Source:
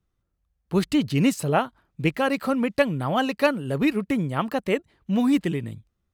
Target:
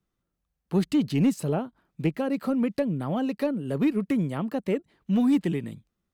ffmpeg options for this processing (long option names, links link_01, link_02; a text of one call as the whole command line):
ffmpeg -i in.wav -filter_complex "[0:a]acrossover=split=540[link_01][link_02];[link_01]lowshelf=frequency=130:width_type=q:width=1.5:gain=-6.5[link_03];[link_02]acompressor=threshold=-34dB:ratio=12[link_04];[link_03][link_04]amix=inputs=2:normalize=0,asoftclip=type=tanh:threshold=-12dB,volume=-1dB" out.wav